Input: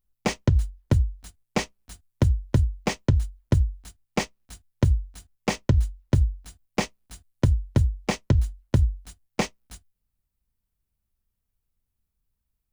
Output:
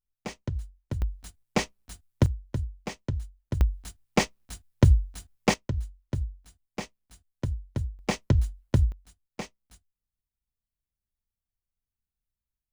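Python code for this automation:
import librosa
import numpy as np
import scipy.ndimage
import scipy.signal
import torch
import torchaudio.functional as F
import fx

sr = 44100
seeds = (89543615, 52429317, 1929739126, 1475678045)

y = fx.gain(x, sr, db=fx.steps((0.0, -12.0), (1.02, -0.5), (2.26, -10.0), (3.61, 2.5), (5.54, -10.0), (7.99, -2.0), (8.92, -11.5)))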